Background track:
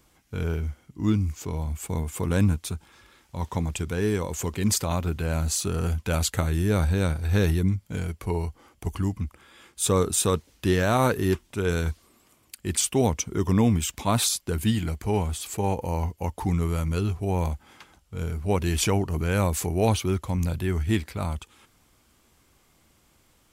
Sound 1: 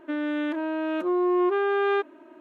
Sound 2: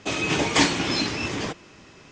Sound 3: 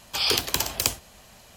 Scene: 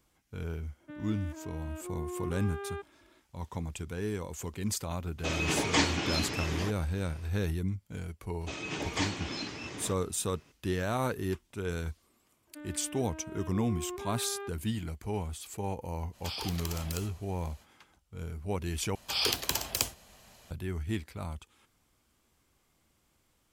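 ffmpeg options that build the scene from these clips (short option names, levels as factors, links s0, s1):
-filter_complex "[1:a]asplit=2[s0][s1];[2:a]asplit=2[s2][s3];[3:a]asplit=2[s4][s5];[0:a]volume=0.335[s6];[s4]acompressor=threshold=0.0501:ratio=6:attack=3.2:release=140:knee=1:detection=peak[s7];[s6]asplit=2[s8][s9];[s8]atrim=end=18.954[s10];[s5]atrim=end=1.56,asetpts=PTS-STARTPTS,volume=0.501[s11];[s9]atrim=start=20.506[s12];[s0]atrim=end=2.4,asetpts=PTS-STARTPTS,volume=0.15,afade=t=in:d=0.004:c=hsin,afade=t=out:st=2.396:d=0.004:c=hsin,adelay=800[s13];[s2]atrim=end=2.11,asetpts=PTS-STARTPTS,volume=0.447,afade=t=in:d=0.004:c=hsin,afade=t=out:st=2.106:d=0.004:c=hsin,adelay=5180[s14];[s3]atrim=end=2.11,asetpts=PTS-STARTPTS,volume=0.224,afade=t=in:d=0.004:c=hsin,afade=t=out:st=2.106:d=0.004:c=hsin,adelay=8410[s15];[s1]atrim=end=2.4,asetpts=PTS-STARTPTS,volume=0.133,afade=t=in:d=0.004:c=hsin,afade=t=out:st=2.396:d=0.004:c=hsin,adelay=12470[s16];[s7]atrim=end=1.56,asetpts=PTS-STARTPTS,volume=0.355,afade=t=in:d=0.05,afade=t=out:st=1.51:d=0.05,adelay=16110[s17];[s10][s11]acrossfade=d=0.004:c1=hsin:c2=hsin[s18];[s18][s12]acrossfade=d=0.004:c1=hsin:c2=hsin[s19];[s19][s13][s14][s15][s16][s17]amix=inputs=6:normalize=0"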